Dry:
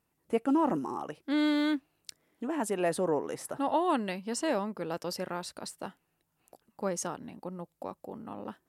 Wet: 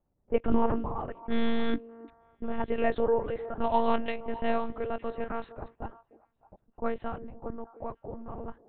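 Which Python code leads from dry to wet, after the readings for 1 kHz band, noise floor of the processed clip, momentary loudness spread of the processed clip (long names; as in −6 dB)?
+1.0 dB, −75 dBFS, 15 LU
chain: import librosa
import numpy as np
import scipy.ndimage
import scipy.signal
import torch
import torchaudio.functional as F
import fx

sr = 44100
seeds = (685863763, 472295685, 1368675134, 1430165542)

y = fx.lpc_monotone(x, sr, seeds[0], pitch_hz=230.0, order=8)
y = fx.echo_stepped(y, sr, ms=304, hz=390.0, octaves=1.4, feedback_pct=70, wet_db=-12)
y = fx.env_lowpass(y, sr, base_hz=710.0, full_db=-23.5)
y = F.gain(torch.from_numpy(y), 3.0).numpy()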